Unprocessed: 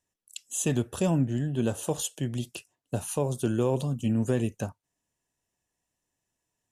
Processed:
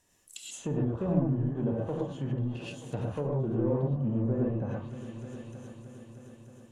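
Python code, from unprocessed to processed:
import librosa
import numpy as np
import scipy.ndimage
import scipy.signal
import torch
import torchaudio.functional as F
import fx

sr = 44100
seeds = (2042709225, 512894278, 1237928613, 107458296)

y = fx.echo_heads(x, sr, ms=310, heads='all three', feedback_pct=44, wet_db=-24)
y = fx.power_curve(y, sr, exponent=0.7)
y = fx.rev_gated(y, sr, seeds[0], gate_ms=150, shape='rising', drr_db=-3.0)
y = fx.env_lowpass_down(y, sr, base_hz=860.0, full_db=-18.0)
y = y * librosa.db_to_amplitude(-8.5)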